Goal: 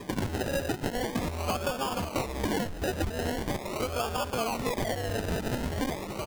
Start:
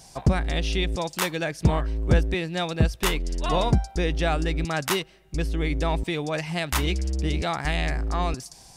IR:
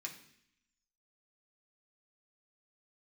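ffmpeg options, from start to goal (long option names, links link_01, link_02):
-filter_complex "[0:a]equalizer=frequency=6100:width_type=o:width=0.4:gain=-6.5,asoftclip=type=tanh:threshold=-16dB,highpass=frequency=580:poles=1,asplit=2[link_01][link_02];[link_02]alimiter=level_in=0.5dB:limit=-24dB:level=0:latency=1:release=13,volume=-0.5dB,volume=1.5dB[link_03];[link_01][link_03]amix=inputs=2:normalize=0,aemphasis=mode=reproduction:type=50kf,asplit=2[link_04][link_05];[1:a]atrim=start_sample=2205,adelay=116[link_06];[link_05][link_06]afir=irnorm=-1:irlink=0,volume=-13dB[link_07];[link_04][link_07]amix=inputs=2:normalize=0,atempo=1.4,aphaser=in_gain=1:out_gain=1:delay=2.9:decay=0.47:speed=0.9:type=triangular,asetrate=66075,aresample=44100,atempo=0.66742,asplit=6[link_08][link_09][link_10][link_11][link_12][link_13];[link_09]adelay=380,afreqshift=120,volume=-14dB[link_14];[link_10]adelay=760,afreqshift=240,volume=-19.7dB[link_15];[link_11]adelay=1140,afreqshift=360,volume=-25.4dB[link_16];[link_12]adelay=1520,afreqshift=480,volume=-31dB[link_17];[link_13]adelay=1900,afreqshift=600,volume=-36.7dB[link_18];[link_08][link_14][link_15][link_16][link_17][link_18]amix=inputs=6:normalize=0,acompressor=threshold=-34dB:ratio=6,acrusher=samples=31:mix=1:aa=0.000001:lfo=1:lforange=18.6:lforate=0.42,volume=6.5dB"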